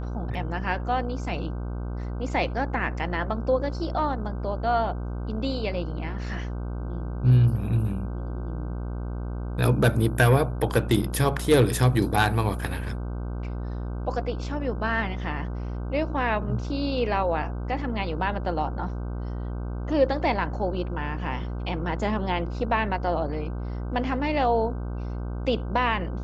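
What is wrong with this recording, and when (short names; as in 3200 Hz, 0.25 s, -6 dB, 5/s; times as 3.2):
buzz 60 Hz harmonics 26 -31 dBFS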